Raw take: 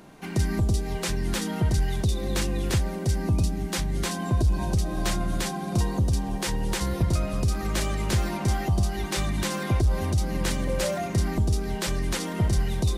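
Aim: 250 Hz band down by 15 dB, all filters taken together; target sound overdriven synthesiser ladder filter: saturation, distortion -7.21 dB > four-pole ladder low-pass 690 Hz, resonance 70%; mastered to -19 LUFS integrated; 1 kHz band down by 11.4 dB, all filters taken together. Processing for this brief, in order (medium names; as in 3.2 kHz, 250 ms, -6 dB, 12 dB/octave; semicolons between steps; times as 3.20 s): peaking EQ 250 Hz -7 dB; peaking EQ 1 kHz -4.5 dB; saturation -30.5 dBFS; four-pole ladder low-pass 690 Hz, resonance 70%; trim +26 dB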